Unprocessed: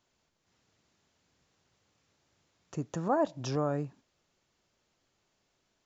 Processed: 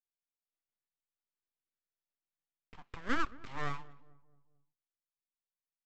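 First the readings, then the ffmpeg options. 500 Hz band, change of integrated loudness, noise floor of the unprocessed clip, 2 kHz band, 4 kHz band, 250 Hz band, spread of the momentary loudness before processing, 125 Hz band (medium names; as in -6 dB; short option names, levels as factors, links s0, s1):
-16.0 dB, -6.0 dB, -78 dBFS, +7.0 dB, -0.5 dB, -9.0 dB, 12 LU, -12.0 dB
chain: -filter_complex "[0:a]agate=range=0.0224:threshold=0.00112:ratio=3:detection=peak,asuperpass=centerf=1100:order=8:qfactor=0.57,aresample=16000,aeval=exprs='abs(val(0))':c=same,aresample=44100,asplit=2[s0][s1];[s1]adelay=222,lowpass=f=900:p=1,volume=0.112,asplit=2[s2][s3];[s3]adelay=222,lowpass=f=900:p=1,volume=0.51,asplit=2[s4][s5];[s5]adelay=222,lowpass=f=900:p=1,volume=0.51,asplit=2[s6][s7];[s7]adelay=222,lowpass=f=900:p=1,volume=0.51[s8];[s0][s2][s4][s6][s8]amix=inputs=5:normalize=0"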